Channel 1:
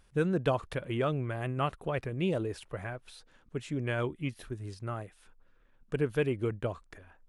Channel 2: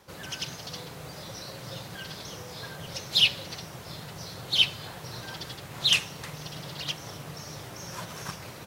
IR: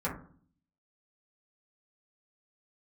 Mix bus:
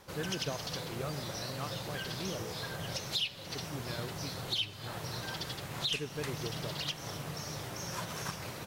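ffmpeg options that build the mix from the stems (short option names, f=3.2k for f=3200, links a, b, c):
-filter_complex "[0:a]volume=-10.5dB[a];[1:a]acompressor=threshold=-34dB:ratio=4,volume=0.5dB[b];[a][b]amix=inputs=2:normalize=0"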